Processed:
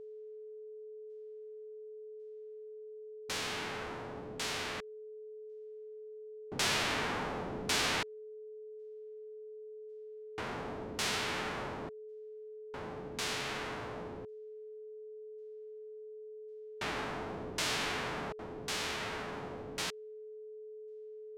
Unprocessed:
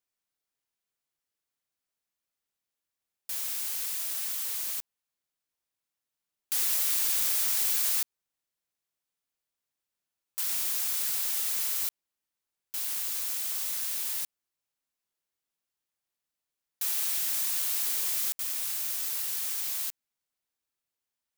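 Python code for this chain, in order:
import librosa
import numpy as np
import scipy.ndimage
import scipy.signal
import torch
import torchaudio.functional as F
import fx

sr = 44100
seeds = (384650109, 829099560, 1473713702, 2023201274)

y = fx.envelope_flatten(x, sr, power=0.1)
y = fx.filter_lfo_lowpass(y, sr, shape='saw_down', hz=0.91, low_hz=400.0, high_hz=5800.0, q=0.72)
y = y + 10.0 ** (-48.0 / 20.0) * np.sin(2.0 * np.pi * 430.0 * np.arange(len(y)) / sr)
y = F.gain(torch.from_numpy(y), 3.0).numpy()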